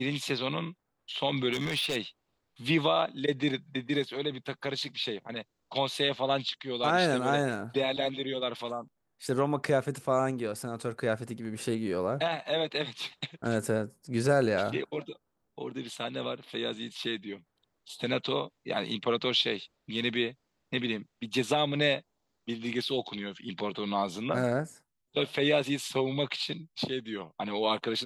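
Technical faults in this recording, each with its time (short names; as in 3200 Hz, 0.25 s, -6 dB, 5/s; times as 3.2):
1.52–1.97 clipped -27 dBFS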